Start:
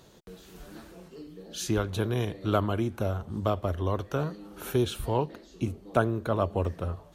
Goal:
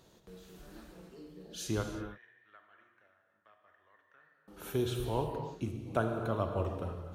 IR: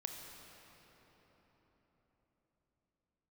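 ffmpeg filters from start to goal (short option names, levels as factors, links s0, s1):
-filter_complex "[0:a]asettb=1/sr,asplit=3[s0][s1][s2];[s0]atrim=end=1.834[s3];[s1]atrim=start=1.83:end=4.48,asetpts=PTS-STARTPTS,afade=t=in:d=0.004:c=qsin,afade=t=out:st=2.646:d=0.004:c=qsin,bandpass=f=1800:t=q:w=17:csg=0[s4];[s2]atrim=start=4.476[s5];[s3][s4]acrossfade=d=0.004:c1=hsin:c2=qsin[s6];[s6][s5]acrossfade=d=0.004:c1=qsin:c2=hsin[s7];[1:a]atrim=start_sample=2205,afade=t=out:st=0.39:d=0.01,atrim=end_sample=17640[s8];[s7][s8]afir=irnorm=-1:irlink=0,volume=0.668"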